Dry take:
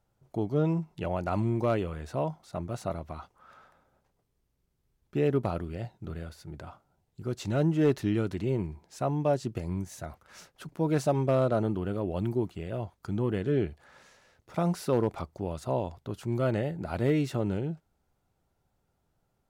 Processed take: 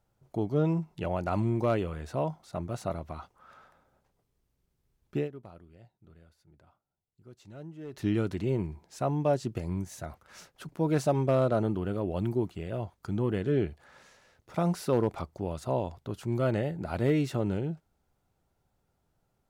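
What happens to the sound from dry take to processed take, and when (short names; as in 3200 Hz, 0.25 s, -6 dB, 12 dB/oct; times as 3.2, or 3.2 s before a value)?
5.16–8.05 dip -18.5 dB, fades 0.13 s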